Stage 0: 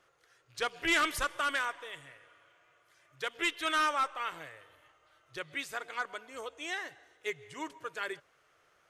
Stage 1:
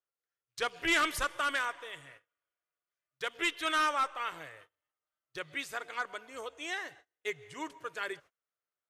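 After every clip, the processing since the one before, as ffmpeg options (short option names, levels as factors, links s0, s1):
-af "agate=range=0.0316:threshold=0.002:ratio=16:detection=peak"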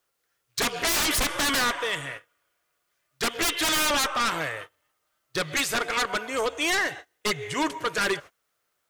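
-af "aeval=exprs='0.0944*sin(PI/2*5.01*val(0)/0.0944)':c=same"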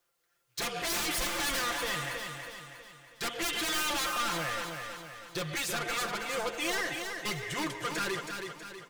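-af "asoftclip=type=tanh:threshold=0.0316,aecho=1:1:5.8:0.65,aecho=1:1:322|644|966|1288|1610|1932:0.501|0.241|0.115|0.0554|0.0266|0.0128,volume=0.75"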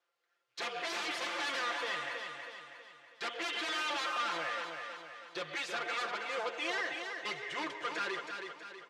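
-af "highpass=400,lowpass=3900,volume=0.794"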